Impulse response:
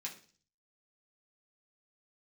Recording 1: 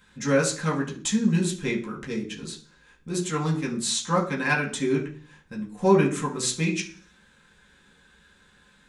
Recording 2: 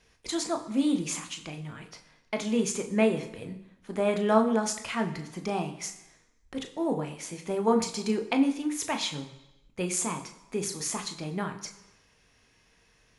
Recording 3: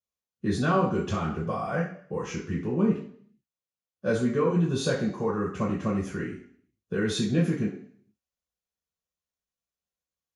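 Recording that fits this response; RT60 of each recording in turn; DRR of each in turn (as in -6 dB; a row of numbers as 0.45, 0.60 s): 1; 0.40, 1.0, 0.55 s; -3.5, 5.5, -5.5 dB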